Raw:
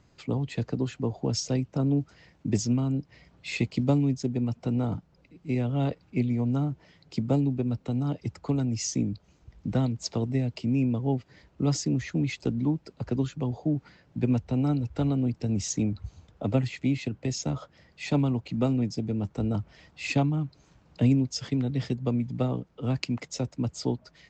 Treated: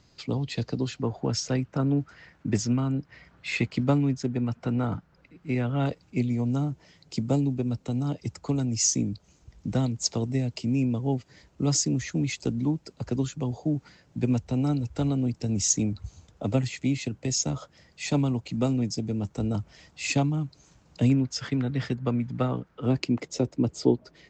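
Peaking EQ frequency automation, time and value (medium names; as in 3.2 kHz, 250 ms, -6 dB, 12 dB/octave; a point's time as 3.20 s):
peaking EQ +10 dB 1.1 oct
4.7 kHz
from 1.02 s 1.5 kHz
from 5.86 s 7.1 kHz
from 21.10 s 1.5 kHz
from 22.86 s 360 Hz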